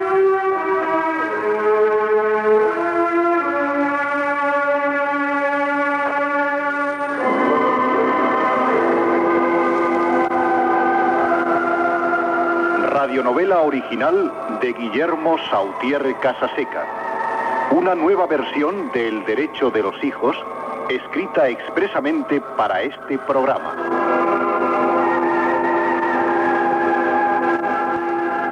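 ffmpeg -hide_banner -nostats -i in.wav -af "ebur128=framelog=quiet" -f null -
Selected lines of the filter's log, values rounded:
Integrated loudness:
  I:         -18.5 LUFS
  Threshold: -28.5 LUFS
Loudness range:
  LRA:         3.7 LU
  Threshold: -38.5 LUFS
  LRA low:   -20.7 LUFS
  LRA high:  -17.0 LUFS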